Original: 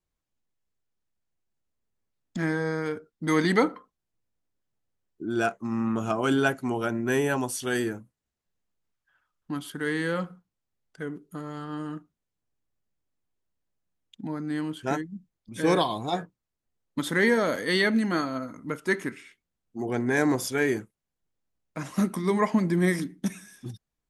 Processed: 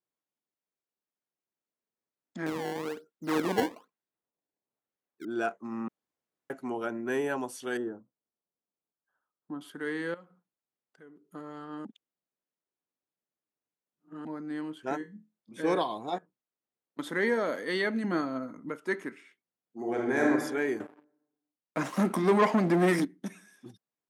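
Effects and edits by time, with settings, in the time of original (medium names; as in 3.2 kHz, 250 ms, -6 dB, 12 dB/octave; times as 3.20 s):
2.46–5.25 s: decimation with a swept rate 20×, swing 160% 1.1 Hz
5.88–6.50 s: room tone
7.77–9.61 s: boxcar filter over 19 samples
10.14–11.25 s: compression 2:1, threshold -54 dBFS
11.85–14.25 s: reverse
14.98–15.61 s: flutter echo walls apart 4 m, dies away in 0.25 s
16.18–16.99 s: compression 8:1, threshold -49 dBFS
18.04–18.69 s: bass shelf 240 Hz +10.5 dB
19.78–20.30 s: reverb throw, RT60 1.1 s, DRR -2 dB
20.80–23.05 s: waveshaping leveller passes 3
whole clip: high-pass 260 Hz 12 dB/octave; treble shelf 2.8 kHz -9 dB; trim -3.5 dB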